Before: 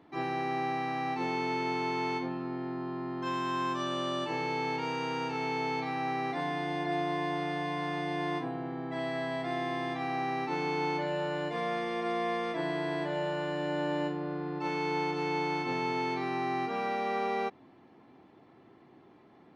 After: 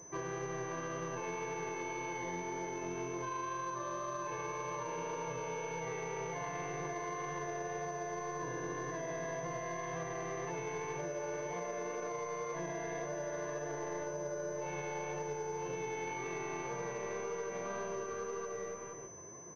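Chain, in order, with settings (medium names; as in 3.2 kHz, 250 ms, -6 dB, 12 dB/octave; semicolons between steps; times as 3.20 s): distance through air 280 m; in parallel at -3 dB: saturation -35.5 dBFS, distortion -10 dB; on the sum: comb 1.9 ms, depth 81%; bouncing-ball echo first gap 570 ms, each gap 0.7×, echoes 5; peak limiter -25.5 dBFS, peak gain reduction 9.5 dB; flange 1.9 Hz, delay 5.5 ms, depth 6.5 ms, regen +58%; compression, threshold -39 dBFS, peak gain reduction 7.5 dB; class-D stage that switches slowly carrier 6.1 kHz; trim +2.5 dB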